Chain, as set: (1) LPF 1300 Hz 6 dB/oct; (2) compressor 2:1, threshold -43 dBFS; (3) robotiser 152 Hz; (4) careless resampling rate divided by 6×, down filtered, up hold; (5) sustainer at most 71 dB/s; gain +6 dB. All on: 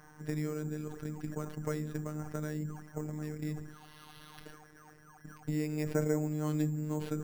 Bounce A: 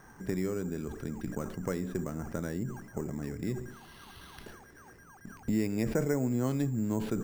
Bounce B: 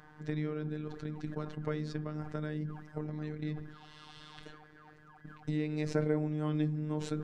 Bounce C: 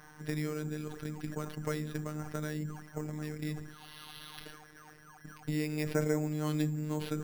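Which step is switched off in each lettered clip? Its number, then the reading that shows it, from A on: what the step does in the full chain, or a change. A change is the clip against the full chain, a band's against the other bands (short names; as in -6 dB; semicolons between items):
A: 3, 125 Hz band -2.0 dB; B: 4, 4 kHz band +3.0 dB; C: 1, momentary loudness spread change -3 LU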